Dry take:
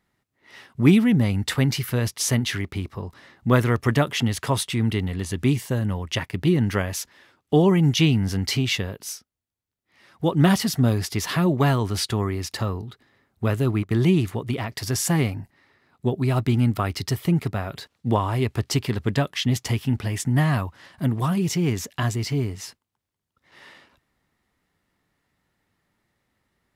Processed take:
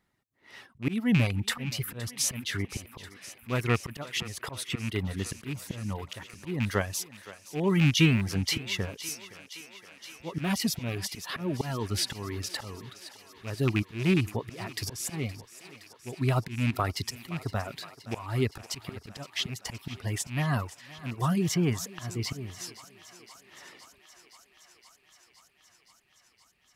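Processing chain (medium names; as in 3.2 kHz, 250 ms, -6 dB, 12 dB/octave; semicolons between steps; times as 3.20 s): rattle on loud lows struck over -17 dBFS, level -15 dBFS; reverb removal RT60 0.62 s; slow attack 255 ms; thinning echo 518 ms, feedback 80%, high-pass 330 Hz, level -16 dB; trim -2.5 dB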